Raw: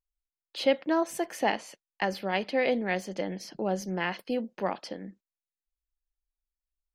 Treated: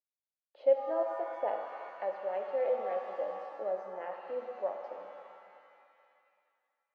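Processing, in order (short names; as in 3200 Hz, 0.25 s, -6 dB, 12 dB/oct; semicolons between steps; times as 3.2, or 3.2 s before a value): ladder band-pass 630 Hz, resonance 65%; shimmer reverb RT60 2.3 s, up +7 st, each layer -8 dB, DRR 3.5 dB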